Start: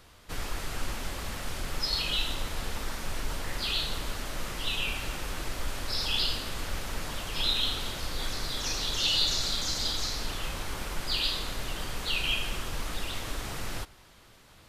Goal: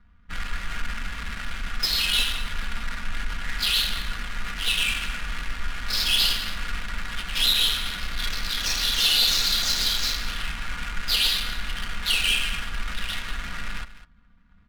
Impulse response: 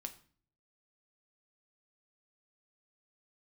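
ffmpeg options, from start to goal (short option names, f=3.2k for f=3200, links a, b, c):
-filter_complex "[0:a]firequalizer=gain_entry='entry(190,0);entry(400,-24);entry(1400,7)':delay=0.05:min_phase=1,asoftclip=type=tanh:threshold=-18.5dB,aecho=1:1:4.2:0.82,adynamicsmooth=sensitivity=5:basefreq=510,asplit=2[a][b];[b]aecho=0:1:202:0.178[c];[a][c]amix=inputs=2:normalize=0,volume=1dB"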